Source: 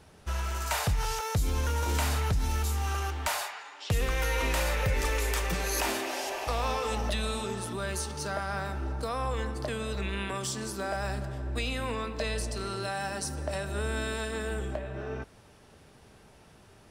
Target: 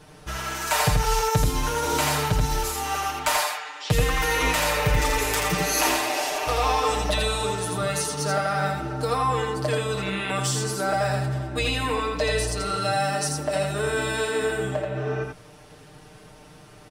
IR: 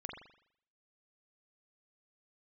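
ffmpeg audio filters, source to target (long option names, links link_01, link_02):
-filter_complex "[0:a]aecho=1:1:6.6:0.92,asplit=2[link_01][link_02];[link_02]aecho=0:1:83:0.668[link_03];[link_01][link_03]amix=inputs=2:normalize=0,volume=4dB"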